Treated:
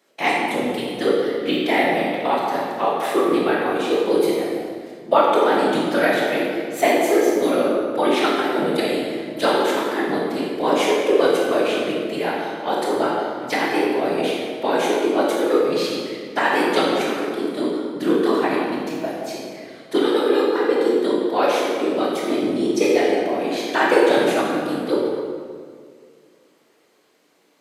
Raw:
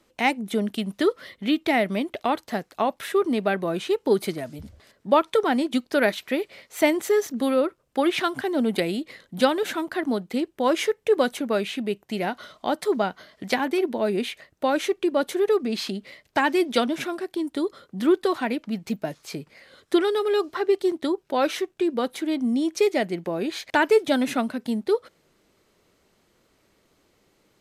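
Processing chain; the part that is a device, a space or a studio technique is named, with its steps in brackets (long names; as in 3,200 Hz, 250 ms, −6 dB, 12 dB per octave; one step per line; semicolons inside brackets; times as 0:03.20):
whispering ghost (random phases in short frames; high-pass filter 310 Hz 12 dB per octave; convolution reverb RT60 2.0 s, pre-delay 17 ms, DRR −4 dB)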